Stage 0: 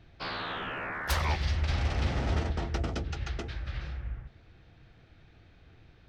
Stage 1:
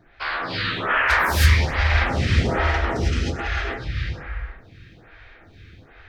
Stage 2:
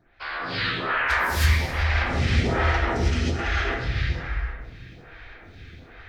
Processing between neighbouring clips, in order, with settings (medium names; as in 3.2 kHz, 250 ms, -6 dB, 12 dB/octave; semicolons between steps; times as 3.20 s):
peaking EQ 1.8 kHz +8 dB 1.3 oct; gated-style reverb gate 350 ms rising, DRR -6.5 dB; lamp-driven phase shifter 1.2 Hz; trim +5.5 dB
gated-style reverb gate 410 ms falling, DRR 6 dB; level rider gain up to 9.5 dB; trim -7.5 dB